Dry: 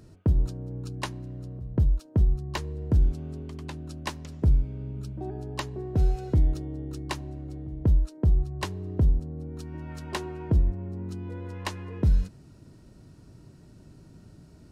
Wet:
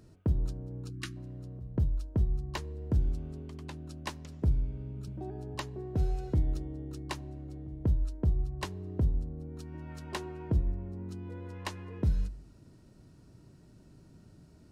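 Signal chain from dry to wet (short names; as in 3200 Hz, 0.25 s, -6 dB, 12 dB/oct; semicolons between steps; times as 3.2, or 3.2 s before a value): de-hum 48.58 Hz, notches 3; 0.9–1.17 spectral gain 380–1100 Hz -23 dB; 5.07–5.55 three-band squash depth 40%; gain -5 dB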